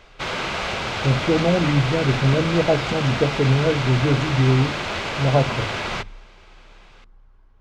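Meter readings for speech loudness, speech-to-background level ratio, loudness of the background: -21.0 LUFS, 4.5 dB, -25.5 LUFS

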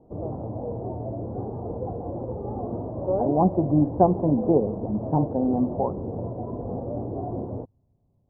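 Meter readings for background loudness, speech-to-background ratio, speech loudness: -32.0 LUFS, 8.5 dB, -23.5 LUFS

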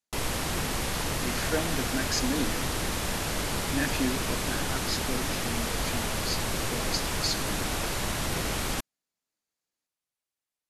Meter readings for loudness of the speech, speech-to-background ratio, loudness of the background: -34.0 LUFS, -4.0 dB, -30.0 LUFS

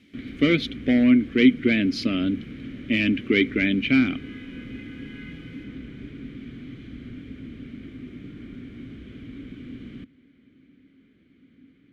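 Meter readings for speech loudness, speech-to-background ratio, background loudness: -21.5 LUFS, 17.5 dB, -39.0 LUFS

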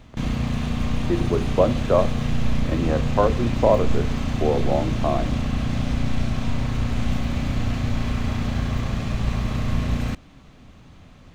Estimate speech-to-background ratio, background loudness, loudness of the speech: 1.5 dB, -25.5 LUFS, -24.0 LUFS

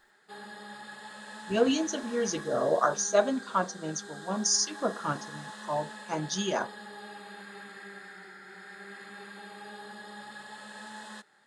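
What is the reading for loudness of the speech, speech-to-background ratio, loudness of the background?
-29.5 LUFS, 14.5 dB, -44.0 LUFS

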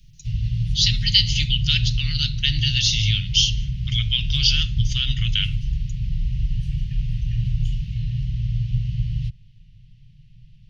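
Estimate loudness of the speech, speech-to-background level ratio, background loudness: -21.0 LUFS, 5.0 dB, -26.0 LUFS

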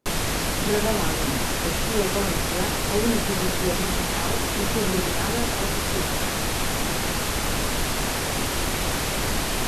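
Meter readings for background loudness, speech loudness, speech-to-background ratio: -25.0 LUFS, -30.0 LUFS, -5.0 dB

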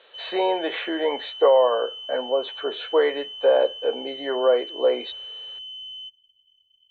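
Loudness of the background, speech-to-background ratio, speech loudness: -35.0 LUFS, 12.0 dB, -23.0 LUFS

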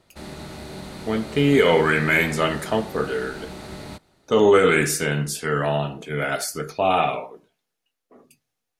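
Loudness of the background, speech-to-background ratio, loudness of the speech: -37.0 LUFS, 16.0 dB, -21.0 LUFS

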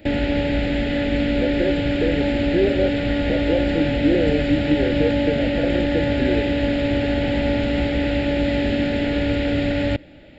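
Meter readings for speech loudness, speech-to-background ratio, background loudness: -24.5 LUFS, -3.0 dB, -21.5 LUFS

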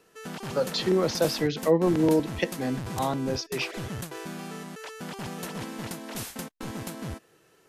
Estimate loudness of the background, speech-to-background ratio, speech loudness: -37.0 LUFS, 10.0 dB, -27.0 LUFS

